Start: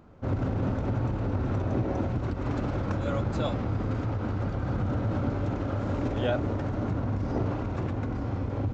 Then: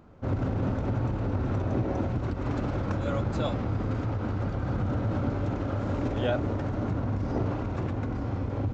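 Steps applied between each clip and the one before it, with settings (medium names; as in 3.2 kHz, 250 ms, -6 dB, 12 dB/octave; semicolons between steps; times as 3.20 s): no audible change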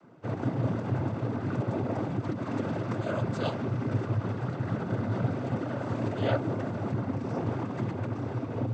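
noise-vocoded speech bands 16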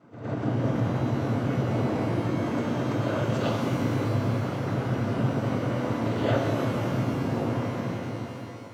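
fade out at the end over 1.32 s; reverse echo 111 ms -10.5 dB; pitch-shifted reverb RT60 2.3 s, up +12 st, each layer -8 dB, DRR 0 dB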